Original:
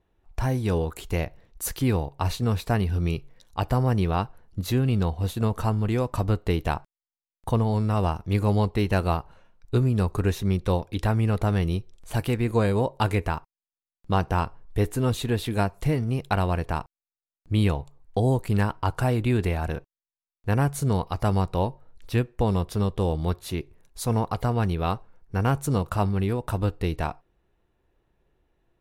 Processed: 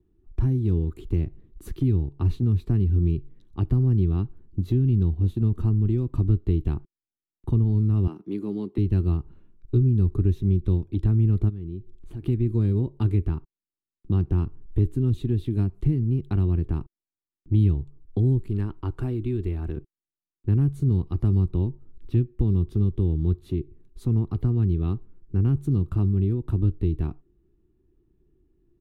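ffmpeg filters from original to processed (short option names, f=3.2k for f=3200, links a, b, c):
-filter_complex "[0:a]asettb=1/sr,asplit=3[a][b][c];[a]atrim=end=8.074[d];[b]atrim=start=8.07:end=8.78,asetpts=PTS-STARTPTS,afade=t=in:d=0.004:c=qsin,afade=t=out:st=0.706:d=0.004:c=qsin,highpass=f=220:w=0.5412,highpass=f=220:w=1.3066[e];[c]atrim=start=8.776[f];[d][e]acrossfade=d=0.004:c1=hsin:c2=qsin[g];[g][f]acrossfade=d=0.004:c1=qsin:c2=hsin,asplit=3[h][i][j];[h]afade=t=out:st=11.48:d=0.02[k];[i]acompressor=threshold=-39dB:ratio=3:attack=3.2:release=140:knee=1:detection=peak,afade=t=in:st=11.48:d=0.02,afade=t=out:st=12.22:d=0.02[l];[j]afade=t=in:st=12.22:d=0.02[m];[k][l][m]amix=inputs=3:normalize=0,asettb=1/sr,asplit=3[n][o][p];[n]atrim=end=18.484[q];[o]atrim=start=18.48:end=19.77,asetpts=PTS-STARTPTS,afade=t=in:d=0.004:c=qsin,afade=t=out:st=1.286:d=0.004:c=qsin,equalizer=f=150:t=o:w=2.3:g=-8.5[r];[p]atrim=start=19.766[s];[q][r]acrossfade=d=0.004:c1=hsin:c2=qsin[t];[t][s]acrossfade=d=0.004:c1=qsin:c2=hsin,firequalizer=gain_entry='entry(200,0);entry(360,5);entry(520,-20);entry(3500,-18);entry(5200,-26)':delay=0.05:min_phase=1,acrossover=split=150|3000[u][v][w];[v]acompressor=threshold=-36dB:ratio=2.5[x];[u][x][w]amix=inputs=3:normalize=0,equalizer=f=1.2k:w=7.1:g=5.5,volume=5dB"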